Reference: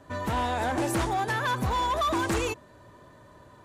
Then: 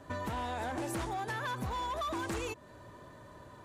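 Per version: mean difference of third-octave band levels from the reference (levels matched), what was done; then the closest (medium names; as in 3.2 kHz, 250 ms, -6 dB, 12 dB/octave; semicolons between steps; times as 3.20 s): 3.0 dB: compression 6:1, threshold -35 dBFS, peak gain reduction 10 dB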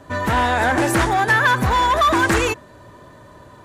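1.5 dB: dynamic bell 1.7 kHz, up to +7 dB, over -44 dBFS, Q 1.7; trim +8.5 dB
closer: second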